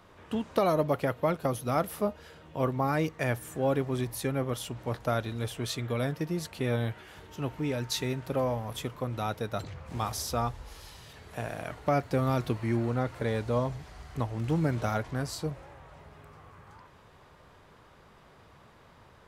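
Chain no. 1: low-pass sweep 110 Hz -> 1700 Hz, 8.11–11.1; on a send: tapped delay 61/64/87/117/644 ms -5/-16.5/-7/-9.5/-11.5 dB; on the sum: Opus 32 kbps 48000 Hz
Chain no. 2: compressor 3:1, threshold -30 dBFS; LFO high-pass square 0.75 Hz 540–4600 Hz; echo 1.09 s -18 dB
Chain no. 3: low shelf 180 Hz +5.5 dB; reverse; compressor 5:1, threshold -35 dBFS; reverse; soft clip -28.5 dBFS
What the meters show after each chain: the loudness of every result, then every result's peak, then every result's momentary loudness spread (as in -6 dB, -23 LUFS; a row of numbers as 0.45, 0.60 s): -30.0, -35.0, -40.5 LUFS; -10.5, -14.5, -29.0 dBFS; 17, 21, 16 LU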